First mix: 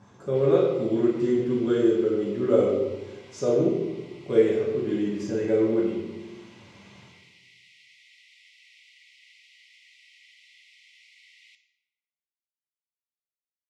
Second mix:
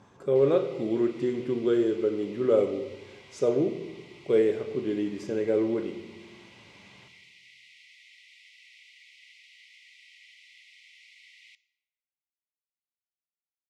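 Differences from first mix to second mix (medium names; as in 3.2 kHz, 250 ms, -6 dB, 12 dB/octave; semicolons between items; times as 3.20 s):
speech: send -9.5 dB; background: send -7.5 dB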